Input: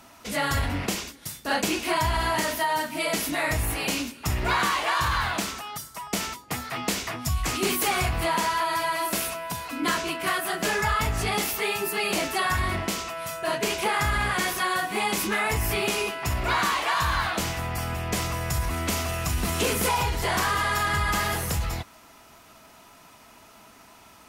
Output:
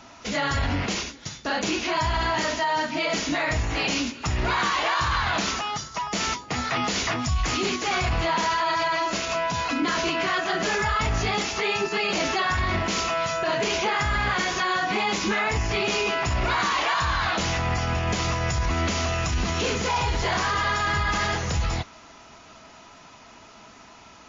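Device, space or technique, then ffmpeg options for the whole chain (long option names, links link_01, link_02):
low-bitrate web radio: -af "dynaudnorm=framelen=310:gausssize=31:maxgain=5dB,alimiter=limit=-20.5dB:level=0:latency=1:release=59,volume=4.5dB" -ar 16000 -c:a libmp3lame -b:a 32k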